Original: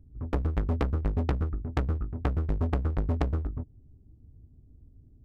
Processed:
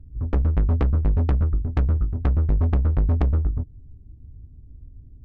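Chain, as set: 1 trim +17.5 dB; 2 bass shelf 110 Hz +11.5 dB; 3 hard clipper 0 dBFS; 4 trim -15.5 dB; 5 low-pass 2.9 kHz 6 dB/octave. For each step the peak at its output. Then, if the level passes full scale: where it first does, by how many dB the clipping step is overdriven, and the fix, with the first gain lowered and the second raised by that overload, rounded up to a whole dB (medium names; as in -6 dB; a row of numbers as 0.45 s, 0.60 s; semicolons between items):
+3.5 dBFS, +7.0 dBFS, 0.0 dBFS, -15.5 dBFS, -15.5 dBFS; step 1, 7.0 dB; step 1 +10.5 dB, step 4 -8.5 dB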